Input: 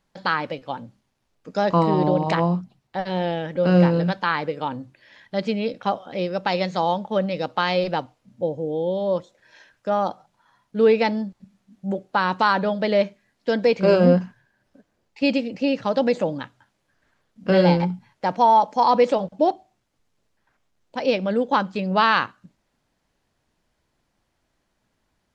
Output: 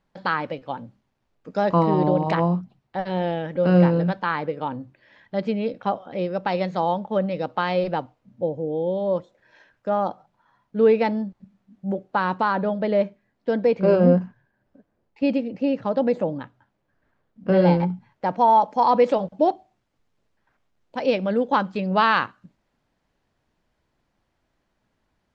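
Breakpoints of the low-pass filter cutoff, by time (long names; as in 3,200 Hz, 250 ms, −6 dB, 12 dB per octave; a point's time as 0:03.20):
low-pass filter 6 dB per octave
2,300 Hz
from 0:03.94 1,600 Hz
from 0:12.38 1,000 Hz
from 0:17.62 1,600 Hz
from 0:18.48 2,200 Hz
from 0:19.06 3,300 Hz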